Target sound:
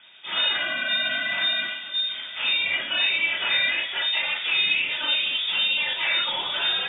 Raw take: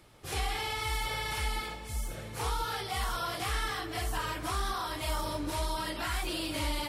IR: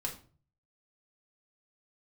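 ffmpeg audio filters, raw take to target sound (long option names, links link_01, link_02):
-filter_complex "[0:a]asplit=2[link_01][link_02];[link_02]equalizer=frequency=1400:width=0.61:gain=9[link_03];[1:a]atrim=start_sample=2205,asetrate=48510,aresample=44100[link_04];[link_03][link_04]afir=irnorm=-1:irlink=0,volume=-1.5dB[link_05];[link_01][link_05]amix=inputs=2:normalize=0,lowpass=frequency=3100:width_type=q:width=0.5098,lowpass=frequency=3100:width_type=q:width=0.6013,lowpass=frequency=3100:width_type=q:width=0.9,lowpass=frequency=3100:width_type=q:width=2.563,afreqshift=-3700,volume=1.5dB"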